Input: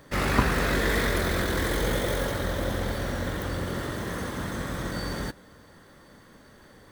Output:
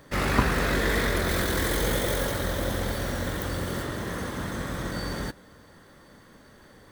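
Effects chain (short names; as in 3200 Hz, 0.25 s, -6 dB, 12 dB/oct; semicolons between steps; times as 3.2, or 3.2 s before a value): 1.28–3.83 high shelf 5300 Hz +6 dB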